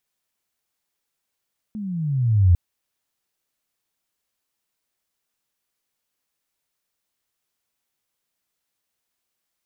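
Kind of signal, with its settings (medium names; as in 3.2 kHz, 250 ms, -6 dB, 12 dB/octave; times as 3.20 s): sweep logarithmic 220 Hz -> 84 Hz -28 dBFS -> -10 dBFS 0.80 s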